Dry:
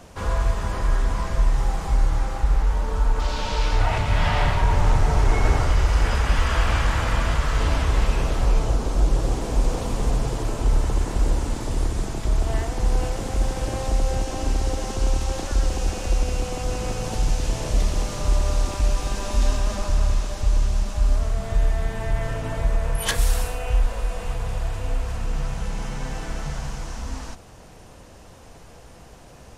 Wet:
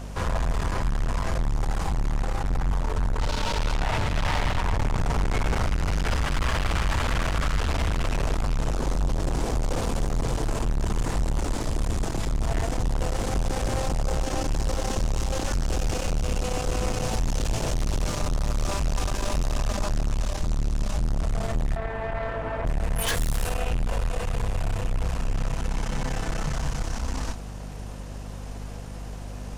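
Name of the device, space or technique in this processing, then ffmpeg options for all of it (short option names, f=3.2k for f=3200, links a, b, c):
valve amplifier with mains hum: -filter_complex "[0:a]asettb=1/sr,asplit=3[a][b][c];[a]atrim=end=21.764[d];[b]atrim=start=21.76:end=22.65,asetpts=PTS-STARTPTS,afade=t=in:d=0.004:c=qsin,afade=t=out:st=0.886:d=0.004:c=qsin,acrossover=split=350 2400:gain=0.224 1 0.0708[e][f][g];[e][f][g]amix=inputs=3:normalize=0[h];[c]atrim=start=22.646[i];[d][h]acrossfade=d=0.004:c1=hsin:c2=qsin[j];[j][i]acrossfade=d=0.004:c1=qsin:c2=hsin,aeval=exprs='(tanh(25.1*val(0)+0.5)-tanh(0.5))/25.1':c=same,aeval=exprs='val(0)+0.00891*(sin(2*PI*50*n/s)+sin(2*PI*2*50*n/s)/2+sin(2*PI*3*50*n/s)/3+sin(2*PI*4*50*n/s)/4+sin(2*PI*5*50*n/s)/5)':c=same,volume=5.5dB"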